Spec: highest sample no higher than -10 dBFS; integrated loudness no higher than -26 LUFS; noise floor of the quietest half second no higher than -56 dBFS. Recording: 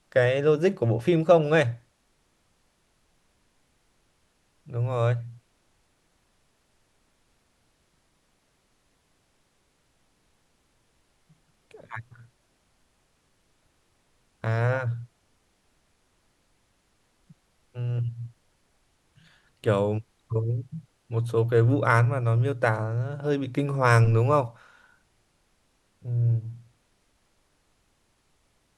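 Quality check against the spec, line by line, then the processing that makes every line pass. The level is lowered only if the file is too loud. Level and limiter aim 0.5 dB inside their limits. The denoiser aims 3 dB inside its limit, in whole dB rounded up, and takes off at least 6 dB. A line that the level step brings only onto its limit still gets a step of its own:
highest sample -5.5 dBFS: fail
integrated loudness -25.0 LUFS: fail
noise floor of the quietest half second -69 dBFS: pass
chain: trim -1.5 dB; peak limiter -10.5 dBFS

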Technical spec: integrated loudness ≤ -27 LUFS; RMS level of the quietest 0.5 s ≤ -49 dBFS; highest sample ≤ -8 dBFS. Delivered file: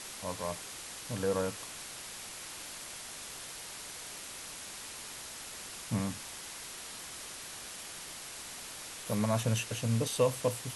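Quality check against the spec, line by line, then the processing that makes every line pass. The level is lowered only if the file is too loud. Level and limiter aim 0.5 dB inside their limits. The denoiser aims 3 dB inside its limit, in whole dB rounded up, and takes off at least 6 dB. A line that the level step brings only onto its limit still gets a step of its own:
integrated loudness -37.0 LUFS: pass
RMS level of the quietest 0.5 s -45 dBFS: fail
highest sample -15.5 dBFS: pass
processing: noise reduction 7 dB, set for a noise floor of -45 dBFS

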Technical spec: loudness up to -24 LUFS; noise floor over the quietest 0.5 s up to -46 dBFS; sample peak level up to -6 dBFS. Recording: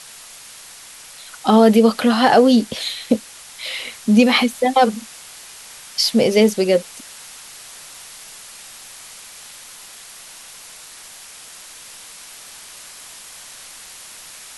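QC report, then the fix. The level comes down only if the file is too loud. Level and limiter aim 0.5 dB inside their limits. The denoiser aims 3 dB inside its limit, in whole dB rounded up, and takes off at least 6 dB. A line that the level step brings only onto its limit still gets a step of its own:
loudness -16.0 LUFS: fail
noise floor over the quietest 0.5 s -40 dBFS: fail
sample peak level -2.5 dBFS: fail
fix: trim -8.5 dB

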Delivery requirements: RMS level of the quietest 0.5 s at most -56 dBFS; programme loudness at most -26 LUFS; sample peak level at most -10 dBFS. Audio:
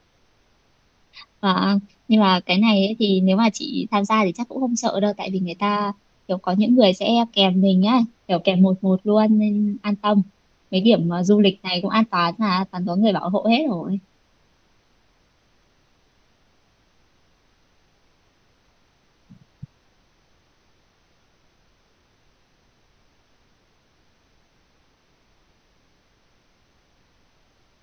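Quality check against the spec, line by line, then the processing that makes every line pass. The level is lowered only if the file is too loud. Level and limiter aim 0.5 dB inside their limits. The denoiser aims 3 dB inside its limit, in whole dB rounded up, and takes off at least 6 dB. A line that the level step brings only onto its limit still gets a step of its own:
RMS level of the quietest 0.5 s -61 dBFS: pass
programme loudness -19.5 LUFS: fail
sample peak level -2.5 dBFS: fail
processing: trim -7 dB; peak limiter -10.5 dBFS

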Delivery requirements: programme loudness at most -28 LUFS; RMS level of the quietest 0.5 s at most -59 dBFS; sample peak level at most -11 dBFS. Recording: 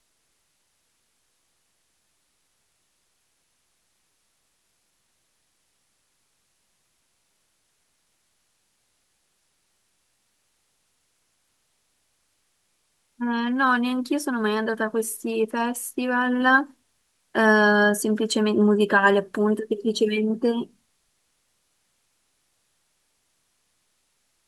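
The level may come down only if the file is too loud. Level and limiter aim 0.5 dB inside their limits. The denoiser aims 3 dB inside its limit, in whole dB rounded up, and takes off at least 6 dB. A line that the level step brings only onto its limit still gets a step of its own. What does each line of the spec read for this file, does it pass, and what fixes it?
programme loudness -22.0 LUFS: fail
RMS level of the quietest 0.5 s -70 dBFS: pass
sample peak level -5.0 dBFS: fail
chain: trim -6.5 dB

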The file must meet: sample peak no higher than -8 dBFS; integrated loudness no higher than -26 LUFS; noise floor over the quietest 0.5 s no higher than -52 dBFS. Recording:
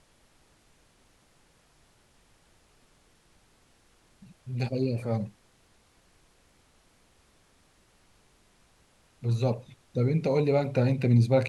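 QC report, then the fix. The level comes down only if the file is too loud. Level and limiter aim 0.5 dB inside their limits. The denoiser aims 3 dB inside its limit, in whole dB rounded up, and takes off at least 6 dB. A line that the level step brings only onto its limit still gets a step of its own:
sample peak -10.5 dBFS: pass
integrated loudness -27.5 LUFS: pass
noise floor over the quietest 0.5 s -63 dBFS: pass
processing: none needed

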